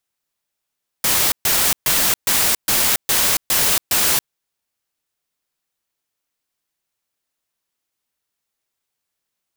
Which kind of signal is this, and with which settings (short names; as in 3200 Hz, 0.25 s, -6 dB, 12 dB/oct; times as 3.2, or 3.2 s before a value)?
noise bursts white, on 0.28 s, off 0.13 s, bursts 8, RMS -16.5 dBFS